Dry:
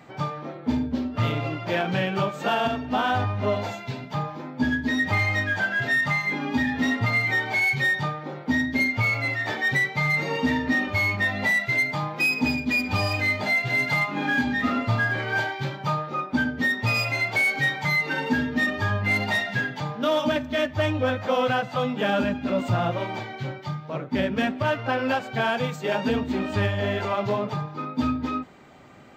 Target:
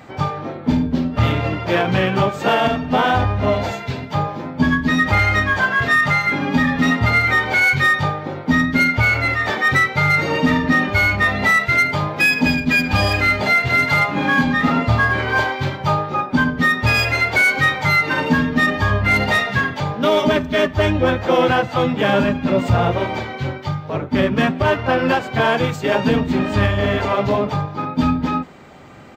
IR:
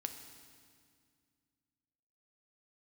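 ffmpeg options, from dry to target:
-filter_complex "[0:a]asplit=2[s0][s1];[s1]asetrate=29433,aresample=44100,atempo=1.49831,volume=0.501[s2];[s0][s2]amix=inputs=2:normalize=0,acontrast=76"

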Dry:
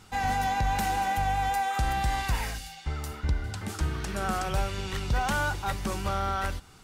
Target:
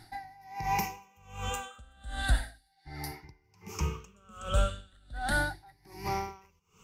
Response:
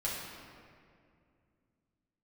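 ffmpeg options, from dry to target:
-af "afftfilt=real='re*pow(10,18/40*sin(2*PI*(0.78*log(max(b,1)*sr/1024/100)/log(2)-(0.36)*(pts-256)/sr)))':imag='im*pow(10,18/40*sin(2*PI*(0.78*log(max(b,1)*sr/1024/100)/log(2)-(0.36)*(pts-256)/sr)))':win_size=1024:overlap=0.75,aeval=exprs='val(0)*pow(10,-31*(0.5-0.5*cos(2*PI*1.3*n/s))/20)':c=same,volume=0.708"

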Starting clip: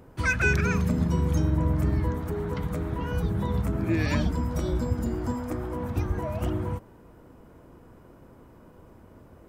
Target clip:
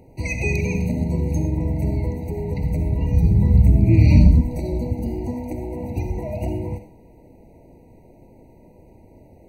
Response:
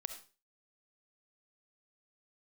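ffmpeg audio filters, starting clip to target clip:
-filter_complex "[0:a]asettb=1/sr,asplit=3[s0][s1][s2];[s0]atrim=end=2.174[s3];[s1]atrim=start=2.17:end=4.41,asetpts=PTS-STARTPTS,afade=t=in:d=0.004:c=qsin,afade=t=out:st=2.236:d=0.004:c=qsin,asubboost=boost=8.5:cutoff=220[s4];[s2]atrim=start=4.406[s5];[s3][s4]acrossfade=d=0.004:c1=hsin:c2=qsin[s6];[s6][s5]acrossfade=d=0.004:c1=qsin:c2=hsin[s7];[1:a]atrim=start_sample=2205[s8];[s7][s8]afir=irnorm=-1:irlink=0,afftfilt=real='re*eq(mod(floor(b*sr/1024/960),2),0)':imag='im*eq(mod(floor(b*sr/1024/960),2),0)':win_size=1024:overlap=0.75,volume=1.78"

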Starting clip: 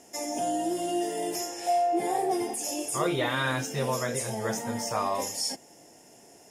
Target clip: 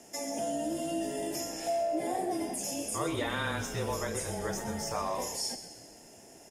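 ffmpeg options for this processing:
-filter_complex "[0:a]acompressor=threshold=0.0112:ratio=1.5,afreqshift=-22,asplit=6[s0][s1][s2][s3][s4][s5];[s1]adelay=128,afreqshift=-64,volume=0.282[s6];[s2]adelay=256,afreqshift=-128,volume=0.145[s7];[s3]adelay=384,afreqshift=-192,volume=0.0733[s8];[s4]adelay=512,afreqshift=-256,volume=0.0376[s9];[s5]adelay=640,afreqshift=-320,volume=0.0191[s10];[s0][s6][s7][s8][s9][s10]amix=inputs=6:normalize=0"

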